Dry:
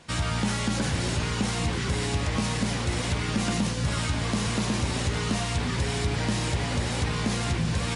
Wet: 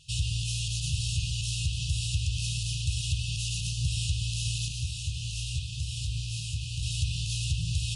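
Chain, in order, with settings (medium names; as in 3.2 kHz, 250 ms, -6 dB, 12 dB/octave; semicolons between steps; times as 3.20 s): brick-wall FIR band-stop 150–2500 Hz; 4.68–6.83 s: detune thickener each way 47 cents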